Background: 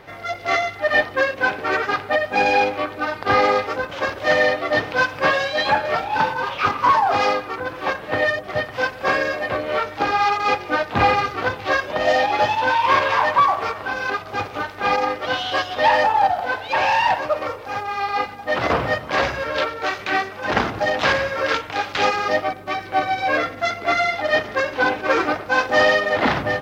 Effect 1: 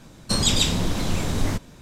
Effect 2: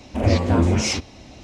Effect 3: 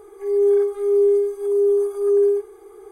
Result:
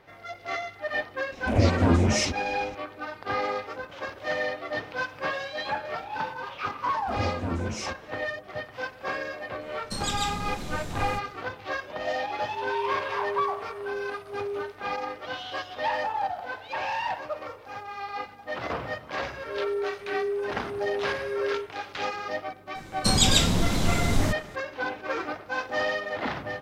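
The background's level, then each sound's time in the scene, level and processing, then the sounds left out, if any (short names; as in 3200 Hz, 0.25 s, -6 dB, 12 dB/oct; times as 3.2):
background -12 dB
1.32 add 2 -3 dB
6.93 add 2 -12.5 dB
9.61 add 1 -11 dB
12.31 add 3 -16.5 dB
19.25 add 3 -13 dB
22.75 add 1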